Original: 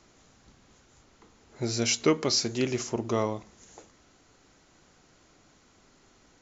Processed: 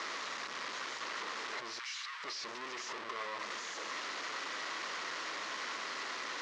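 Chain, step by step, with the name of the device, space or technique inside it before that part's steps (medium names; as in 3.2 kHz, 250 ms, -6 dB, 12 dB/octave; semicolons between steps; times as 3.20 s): home computer beeper (one-bit comparator; cabinet simulation 570–5300 Hz, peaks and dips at 760 Hz -6 dB, 1.1 kHz +7 dB, 1.9 kHz +6 dB); 1.79–2.24 s: high-pass 1.1 kHz 24 dB/octave; trim -5.5 dB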